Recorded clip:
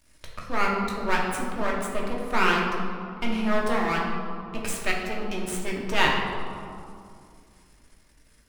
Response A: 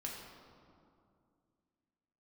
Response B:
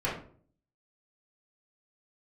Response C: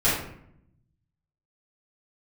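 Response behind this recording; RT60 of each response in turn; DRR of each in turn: A; 2.4, 0.50, 0.70 seconds; −3.0, −9.0, −13.0 decibels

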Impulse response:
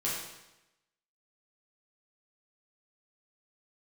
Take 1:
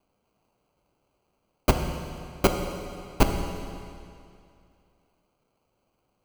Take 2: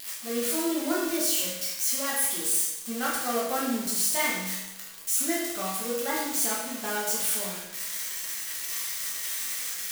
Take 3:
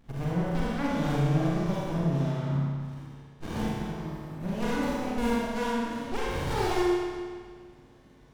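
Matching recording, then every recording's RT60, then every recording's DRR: 2; 2.4, 0.95, 1.8 seconds; 4.0, −7.0, −6.5 decibels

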